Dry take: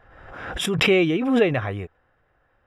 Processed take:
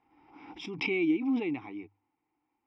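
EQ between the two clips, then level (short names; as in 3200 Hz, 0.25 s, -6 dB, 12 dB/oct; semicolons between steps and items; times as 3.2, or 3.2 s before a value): vowel filter u; synth low-pass 5300 Hz, resonance Q 8.5; notches 50/100 Hz; 0.0 dB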